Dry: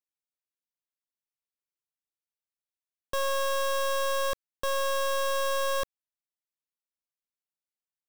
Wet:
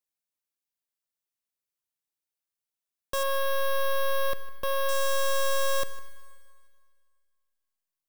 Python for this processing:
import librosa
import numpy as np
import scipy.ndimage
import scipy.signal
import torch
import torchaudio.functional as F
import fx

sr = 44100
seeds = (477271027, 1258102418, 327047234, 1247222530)

y = fx.dead_time(x, sr, dead_ms=0.061, at=(3.23, 4.89))
y = fx.high_shelf(y, sr, hz=6200.0, db=5.5)
y = y + 10.0 ** (-19.5 / 20.0) * np.pad(y, (int(157 * sr / 1000.0), 0))[:len(y)]
y = fx.rev_schroeder(y, sr, rt60_s=2.0, comb_ms=32, drr_db=14.5)